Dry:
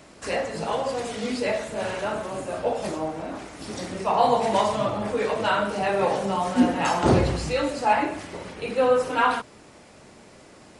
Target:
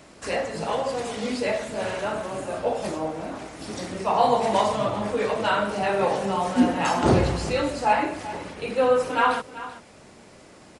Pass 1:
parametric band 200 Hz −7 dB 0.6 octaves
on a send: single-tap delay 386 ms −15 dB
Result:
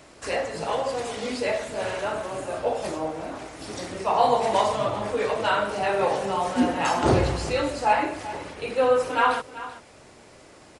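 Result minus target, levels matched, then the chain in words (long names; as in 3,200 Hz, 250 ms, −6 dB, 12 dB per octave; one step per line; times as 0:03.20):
250 Hz band −2.5 dB
on a send: single-tap delay 386 ms −15 dB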